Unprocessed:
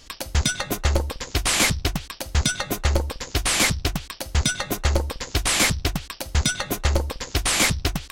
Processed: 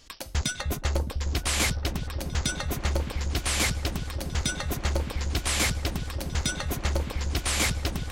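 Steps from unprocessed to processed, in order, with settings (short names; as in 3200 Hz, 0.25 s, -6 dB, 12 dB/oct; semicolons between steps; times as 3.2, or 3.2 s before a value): repeats that get brighter 0.307 s, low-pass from 200 Hz, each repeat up 1 oct, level -3 dB; gain -6.5 dB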